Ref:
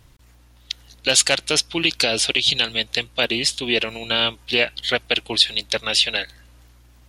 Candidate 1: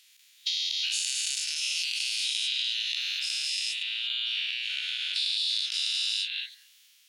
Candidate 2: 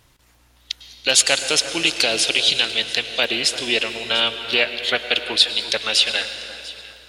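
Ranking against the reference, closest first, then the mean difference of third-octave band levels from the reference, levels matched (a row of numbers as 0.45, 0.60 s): 2, 1; 5.5, 17.5 dB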